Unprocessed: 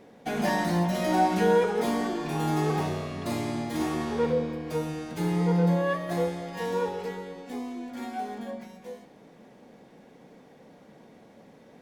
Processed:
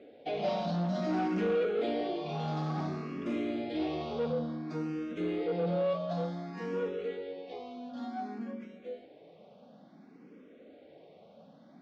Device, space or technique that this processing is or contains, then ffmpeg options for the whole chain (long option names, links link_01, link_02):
barber-pole phaser into a guitar amplifier: -filter_complex "[0:a]asplit=2[link_01][link_02];[link_02]afreqshift=0.56[link_03];[link_01][link_03]amix=inputs=2:normalize=1,asoftclip=type=tanh:threshold=-25.5dB,highpass=100,equalizer=frequency=120:width_type=q:width=4:gain=-10,equalizer=frequency=290:width_type=q:width=4:gain=3,equalizer=frequency=610:width_type=q:width=4:gain=4,equalizer=frequency=930:width_type=q:width=4:gain=-9,equalizer=frequency=1800:width_type=q:width=4:gain=-8,lowpass=frequency=4400:width=0.5412,lowpass=frequency=4400:width=1.3066"